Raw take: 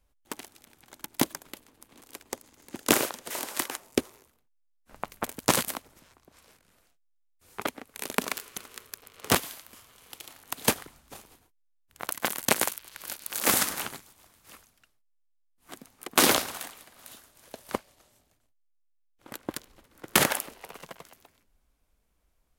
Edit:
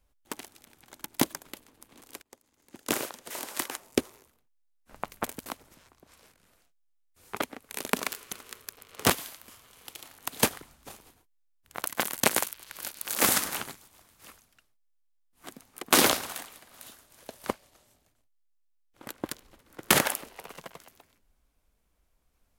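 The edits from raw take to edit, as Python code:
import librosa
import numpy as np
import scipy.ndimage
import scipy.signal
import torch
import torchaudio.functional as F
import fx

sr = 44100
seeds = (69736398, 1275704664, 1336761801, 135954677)

y = fx.edit(x, sr, fx.fade_in_from(start_s=2.22, length_s=1.77, floor_db=-22.0),
    fx.cut(start_s=5.46, length_s=0.25), tone=tone)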